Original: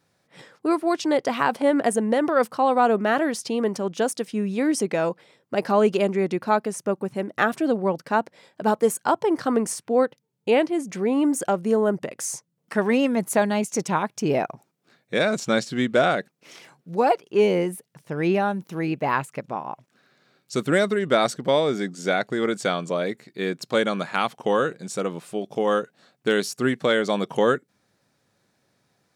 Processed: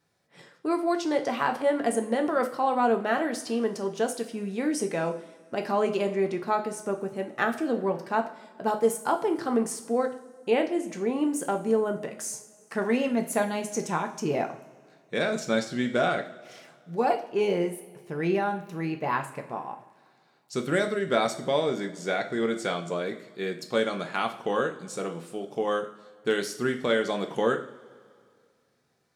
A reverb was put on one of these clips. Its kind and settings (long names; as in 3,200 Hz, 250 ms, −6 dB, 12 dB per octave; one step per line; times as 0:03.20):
coupled-rooms reverb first 0.43 s, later 2.2 s, from −19 dB, DRR 4 dB
level −6 dB